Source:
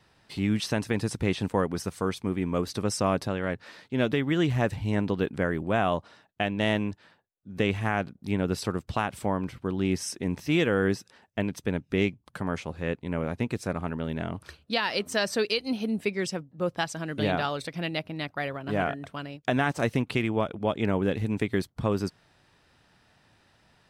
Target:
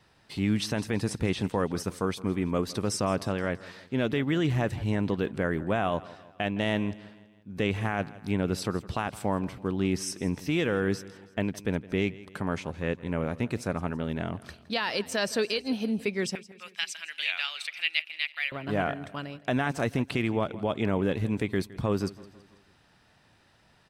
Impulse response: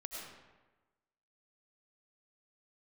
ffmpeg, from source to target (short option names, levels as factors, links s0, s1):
-filter_complex "[0:a]alimiter=limit=0.141:level=0:latency=1:release=14,asettb=1/sr,asplit=3[s0][s1][s2];[s0]atrim=end=16.354[s3];[s1]atrim=start=16.35:end=18.52,asetpts=PTS-STARTPTS,afade=t=in:d=0.004:c=qsin,afade=t=out:st=2.166:d=0.004:c=qsin,highpass=f=2400:t=q:w=3.3[s4];[s2]atrim=start=18.516[s5];[s3][s4]acrossfade=d=0.004:c1=hsin:c2=qsin[s6];[s6][s5]acrossfade=d=0.004:c1=qsin:c2=hsin,aecho=1:1:164|328|492|656:0.112|0.0561|0.0281|0.014"